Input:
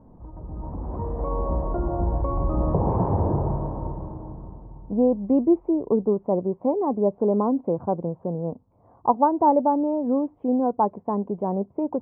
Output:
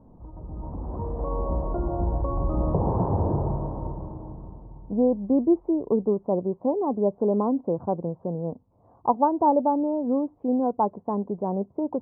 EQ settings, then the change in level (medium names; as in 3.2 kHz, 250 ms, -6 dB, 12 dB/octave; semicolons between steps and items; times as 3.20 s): low-pass 1.4 kHz 12 dB/octave; -1.5 dB